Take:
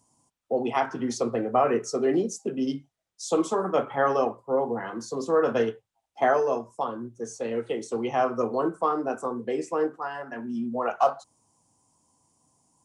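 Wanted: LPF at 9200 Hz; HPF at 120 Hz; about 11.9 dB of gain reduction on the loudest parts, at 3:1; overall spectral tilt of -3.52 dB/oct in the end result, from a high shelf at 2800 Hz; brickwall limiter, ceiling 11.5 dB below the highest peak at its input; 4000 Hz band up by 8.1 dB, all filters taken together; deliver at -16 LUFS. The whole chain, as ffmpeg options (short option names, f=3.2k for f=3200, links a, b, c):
-af "highpass=120,lowpass=9.2k,highshelf=f=2.8k:g=5,equalizer=f=4k:t=o:g=7,acompressor=threshold=-33dB:ratio=3,volume=23.5dB,alimiter=limit=-7dB:level=0:latency=1"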